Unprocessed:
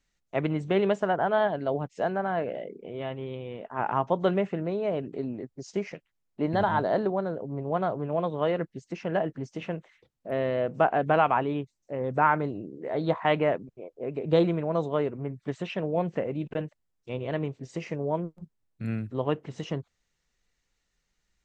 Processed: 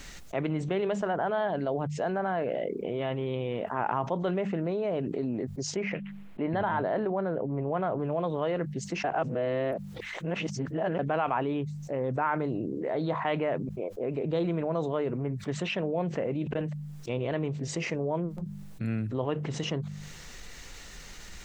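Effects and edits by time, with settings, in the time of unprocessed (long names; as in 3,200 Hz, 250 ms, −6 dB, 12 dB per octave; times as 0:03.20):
0:05.76–0:08.00: high shelf with overshoot 3,800 Hz −13 dB, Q 1.5
0:09.04–0:10.99: reverse
whole clip: hum removal 49.74 Hz, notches 4; envelope flattener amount 70%; level −8 dB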